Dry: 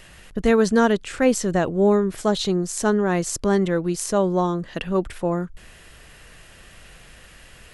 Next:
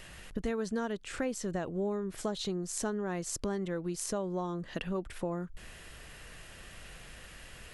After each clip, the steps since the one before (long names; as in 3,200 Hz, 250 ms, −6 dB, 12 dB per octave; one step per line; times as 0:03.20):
downward compressor 4 to 1, threshold −30 dBFS, peak gain reduction 15 dB
level −3 dB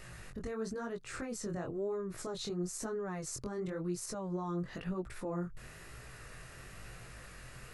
thirty-one-band graphic EQ 125 Hz +11 dB, 400 Hz +3 dB, 1,250 Hz +5 dB, 3,150 Hz −9 dB
brickwall limiter −28.5 dBFS, peak gain reduction 9.5 dB
chorus effect 1 Hz, delay 16.5 ms, depth 7.2 ms
level +1.5 dB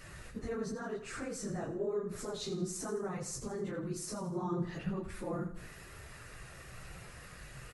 random phases in long frames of 50 ms
on a send: repeating echo 81 ms, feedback 44%, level −11.5 dB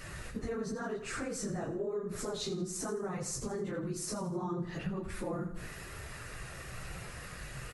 downward compressor 3 to 1, threshold −40 dBFS, peak gain reduction 8.5 dB
level +5.5 dB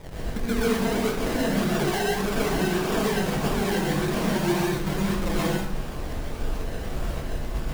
in parallel at −4 dB: comparator with hysteresis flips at −36.5 dBFS
on the sum: sample-and-hold swept by an LFO 30×, swing 60% 1.7 Hz
dense smooth reverb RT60 0.55 s, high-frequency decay 0.85×, pre-delay 110 ms, DRR −6.5 dB
level +3 dB